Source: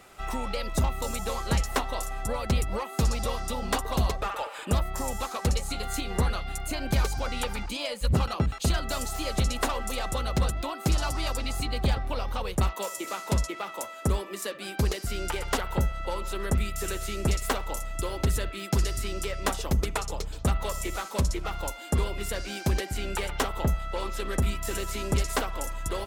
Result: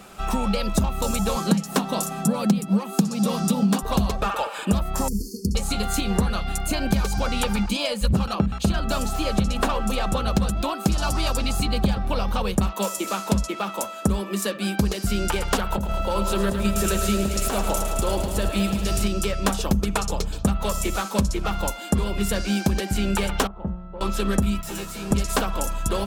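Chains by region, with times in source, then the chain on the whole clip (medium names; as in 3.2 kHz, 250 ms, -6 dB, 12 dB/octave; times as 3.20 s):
1.36–3.83 s: elliptic high-pass 160 Hz + tone controls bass +15 dB, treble +4 dB
5.08–5.55 s: peaking EQ 7.5 kHz -7 dB 0.61 oct + compression 12:1, threshold -27 dBFS + brick-wall FIR band-stop 470–4300 Hz
8.35–10.28 s: tone controls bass +1 dB, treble -6 dB + hum notches 60/120/180/240 Hz
15.72–19.08 s: peaking EQ 640 Hz +6 dB 0.39 oct + compressor with a negative ratio -30 dBFS + bit-crushed delay 108 ms, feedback 80%, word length 9-bit, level -9 dB
23.47–24.01 s: low-pass 1.2 kHz + feedback comb 180 Hz, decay 1.2 s, mix 80%
24.61–25.11 s: comb filter that takes the minimum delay 5.9 ms + feedback comb 80 Hz, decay 0.16 s, mix 100%
whole clip: peaking EQ 200 Hz +13.5 dB 0.28 oct; band-stop 2 kHz, Q 8.9; compression 6:1, threshold -24 dBFS; trim +7 dB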